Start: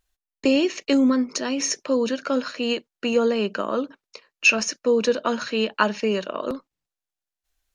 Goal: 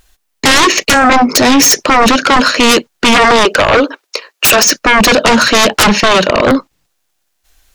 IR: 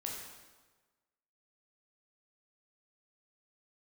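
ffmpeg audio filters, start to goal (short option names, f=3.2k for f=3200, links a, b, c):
-filter_complex "[0:a]asettb=1/sr,asplit=3[a][b][c];[a]atrim=end=3.454[d];[b]atrim=start=3.45:end=4.65,asetpts=PTS-STARTPTS,afade=t=in:d=0.004:c=qsin,afade=t=out:st=1.196:d=0.004:c=qsin,highpass=f=340:w=0.5412,highpass=f=340:w=1.3066[e];[c]atrim=start=4.646[f];[d][e]acrossfade=d=0.004:c1=hsin:c2=qsin[g];[g][f]acrossfade=d=0.004:c1=qsin:c2=hsin,aeval=exprs='0.631*sin(PI/2*10*val(0)/0.631)':c=same"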